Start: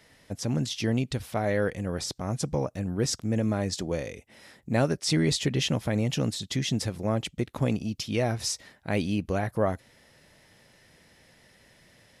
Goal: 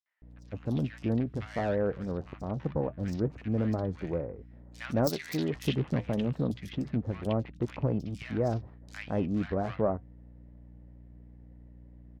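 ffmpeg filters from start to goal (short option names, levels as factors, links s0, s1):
-filter_complex "[0:a]adynamicsmooth=sensitivity=2.5:basefreq=680,flanger=delay=2:depth=3:regen=-80:speed=0.26:shape=triangular,aeval=exprs='val(0)+0.00251*(sin(2*PI*60*n/s)+sin(2*PI*2*60*n/s)/2+sin(2*PI*3*60*n/s)/3+sin(2*PI*4*60*n/s)/4+sin(2*PI*5*60*n/s)/5)':c=same,asplit=3[s0][s1][s2];[s0]afade=t=out:st=4.86:d=0.02[s3];[s1]aemphasis=mode=production:type=bsi,afade=t=in:st=4.86:d=0.02,afade=t=out:st=5.32:d=0.02[s4];[s2]afade=t=in:st=5.32:d=0.02[s5];[s3][s4][s5]amix=inputs=3:normalize=0,acrossover=split=1400|4500[s6][s7][s8];[s7]adelay=60[s9];[s6]adelay=220[s10];[s10][s9][s8]amix=inputs=3:normalize=0,volume=1.33"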